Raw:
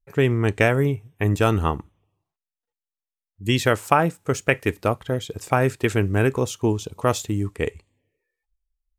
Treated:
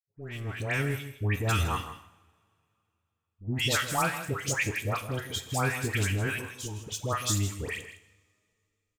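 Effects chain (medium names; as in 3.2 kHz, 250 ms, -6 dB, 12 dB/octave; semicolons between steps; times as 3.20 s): fade-in on the opening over 1.17 s; amplifier tone stack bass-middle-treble 5-5-5; waveshaping leveller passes 2; in parallel at -1 dB: peak limiter -24.5 dBFS, peak gain reduction 10.5 dB; 6.17–6.81 s: on the sum: level held to a coarse grid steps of 12 dB; phase dispersion highs, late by 135 ms, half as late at 1.3 kHz; flange 0.43 Hz, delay 9.2 ms, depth 3.3 ms, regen +76%; delay 160 ms -12.5 dB; two-slope reverb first 0.89 s, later 2.9 s, from -21 dB, DRR 11.5 dB; trim +1 dB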